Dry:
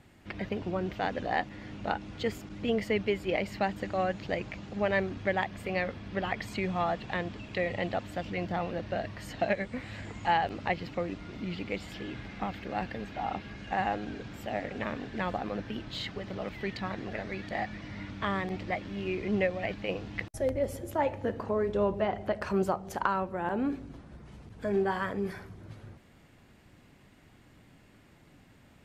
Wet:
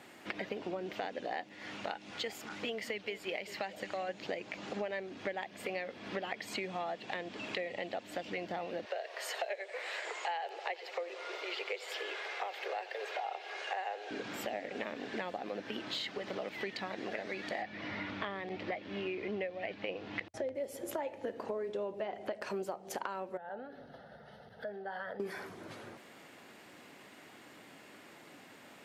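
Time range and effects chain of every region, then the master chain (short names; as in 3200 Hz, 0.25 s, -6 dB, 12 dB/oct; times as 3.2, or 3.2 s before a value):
1.54–4.09 bell 320 Hz -7 dB 2.5 oct + delay with a stepping band-pass 0.196 s, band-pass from 210 Hz, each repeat 1.4 oct, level -10.5 dB
8.85–14.11 steep high-pass 380 Hz 72 dB/oct + feedback echo 89 ms, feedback 59%, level -18 dB
17.62–20.55 LPF 4000 Hz + bell 88 Hz +10 dB 0.57 oct
23.37–25.2 high shelf 2800 Hz -9.5 dB + compressor 4:1, threshold -41 dBFS + fixed phaser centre 1600 Hz, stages 8
whole clip: HPF 350 Hz 12 dB/oct; dynamic EQ 1200 Hz, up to -7 dB, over -47 dBFS, Q 1.5; compressor 6:1, threshold -44 dBFS; gain +8 dB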